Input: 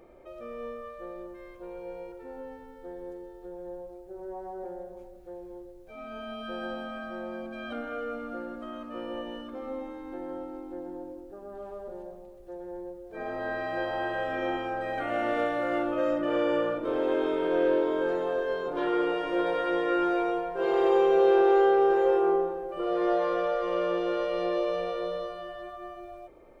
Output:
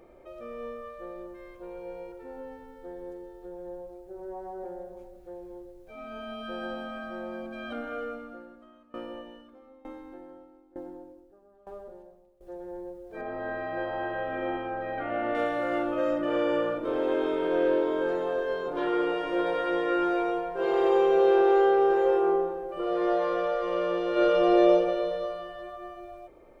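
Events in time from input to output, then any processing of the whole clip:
8.03–12.41 dB-ramp tremolo decaying 1.1 Hz, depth 21 dB
13.21–15.35 air absorption 290 m
24.11–24.72 reverb throw, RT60 1.7 s, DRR -5.5 dB

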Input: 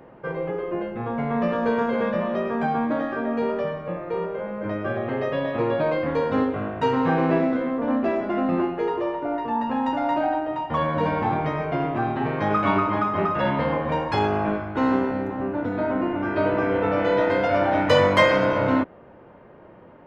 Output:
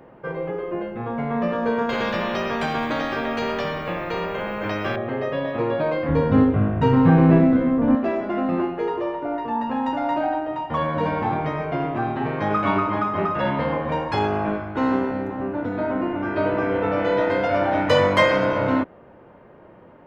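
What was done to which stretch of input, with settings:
1.89–4.96 spectral compressor 2:1
6.09–7.95 tone controls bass +15 dB, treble -5 dB

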